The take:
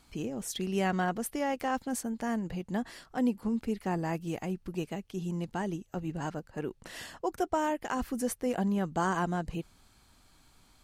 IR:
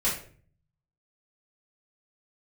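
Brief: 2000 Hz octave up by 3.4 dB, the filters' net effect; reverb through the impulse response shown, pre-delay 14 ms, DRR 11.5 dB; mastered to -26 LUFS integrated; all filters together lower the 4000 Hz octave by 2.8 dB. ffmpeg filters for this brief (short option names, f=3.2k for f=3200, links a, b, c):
-filter_complex "[0:a]equalizer=f=2k:t=o:g=6,equalizer=f=4k:t=o:g=-7.5,asplit=2[a][b];[1:a]atrim=start_sample=2205,adelay=14[c];[b][c]afir=irnorm=-1:irlink=0,volume=-21dB[d];[a][d]amix=inputs=2:normalize=0,volume=7dB"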